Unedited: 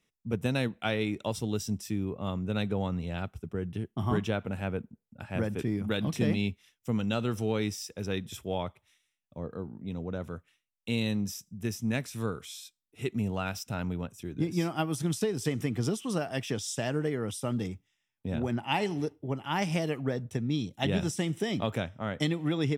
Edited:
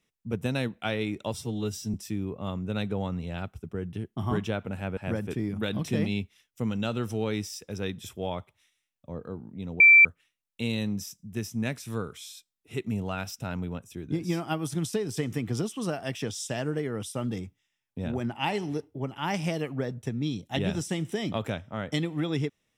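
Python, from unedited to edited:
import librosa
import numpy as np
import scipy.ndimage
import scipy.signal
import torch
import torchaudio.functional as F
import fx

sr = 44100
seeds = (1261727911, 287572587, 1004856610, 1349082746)

y = fx.edit(x, sr, fx.stretch_span(start_s=1.34, length_s=0.4, factor=1.5),
    fx.cut(start_s=4.77, length_s=0.48),
    fx.bleep(start_s=10.08, length_s=0.25, hz=2340.0, db=-11.0), tone=tone)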